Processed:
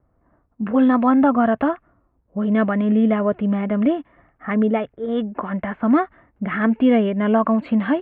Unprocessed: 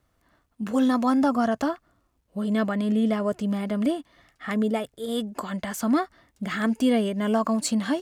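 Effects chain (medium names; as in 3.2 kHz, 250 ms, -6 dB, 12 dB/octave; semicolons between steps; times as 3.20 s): inverse Chebyshev low-pass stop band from 5.1 kHz, stop band 40 dB; level-controlled noise filter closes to 920 Hz, open at -18 dBFS; trim +6 dB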